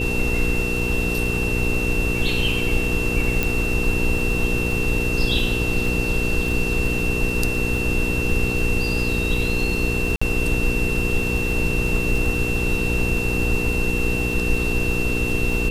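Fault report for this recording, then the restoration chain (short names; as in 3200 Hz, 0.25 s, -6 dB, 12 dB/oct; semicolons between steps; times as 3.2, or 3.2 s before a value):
crackle 56/s -29 dBFS
hum 60 Hz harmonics 8 -26 dBFS
tone 2700 Hz -25 dBFS
3.43 pop
10.16–10.21 gap 55 ms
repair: de-click; de-hum 60 Hz, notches 8; notch 2700 Hz, Q 30; interpolate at 10.16, 55 ms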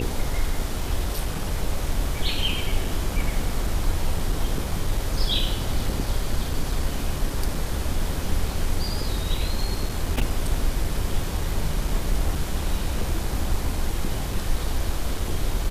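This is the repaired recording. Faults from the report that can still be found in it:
3.43 pop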